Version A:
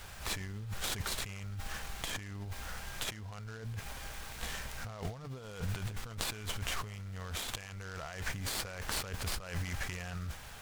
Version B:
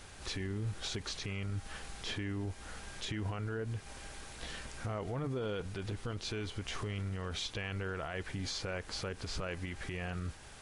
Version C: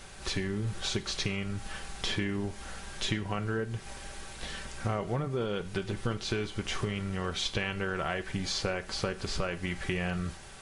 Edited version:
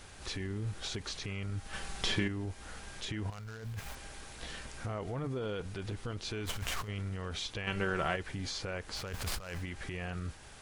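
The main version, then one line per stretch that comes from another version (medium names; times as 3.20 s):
B
1.73–2.28 s: from C
3.30–3.95 s: from A
6.46–6.88 s: from A
7.67–8.16 s: from C
9.05–9.56 s: from A, crossfade 0.24 s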